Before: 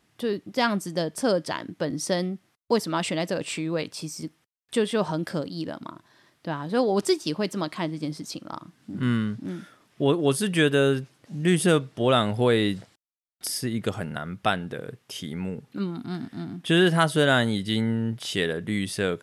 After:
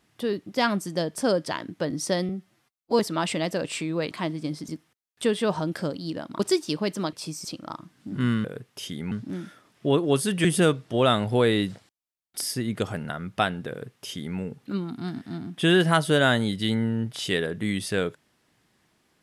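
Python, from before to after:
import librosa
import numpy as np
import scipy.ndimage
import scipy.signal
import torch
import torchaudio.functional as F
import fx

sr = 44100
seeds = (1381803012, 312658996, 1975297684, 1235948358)

y = fx.edit(x, sr, fx.stretch_span(start_s=2.29, length_s=0.47, factor=1.5),
    fx.swap(start_s=3.88, length_s=0.32, other_s=7.7, other_length_s=0.57),
    fx.cut(start_s=5.91, length_s=1.06),
    fx.cut(start_s=10.6, length_s=0.91),
    fx.duplicate(start_s=14.77, length_s=0.67, to_s=9.27), tone=tone)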